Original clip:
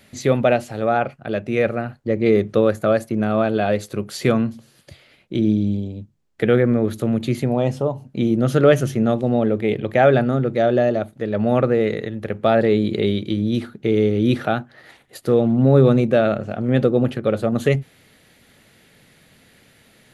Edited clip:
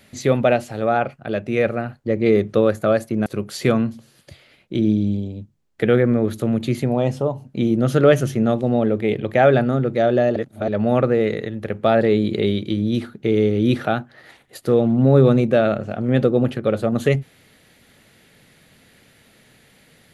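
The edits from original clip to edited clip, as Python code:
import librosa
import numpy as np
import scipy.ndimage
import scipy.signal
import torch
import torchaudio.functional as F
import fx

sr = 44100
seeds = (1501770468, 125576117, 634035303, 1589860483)

y = fx.edit(x, sr, fx.cut(start_s=3.26, length_s=0.6),
    fx.reverse_span(start_s=10.96, length_s=0.32), tone=tone)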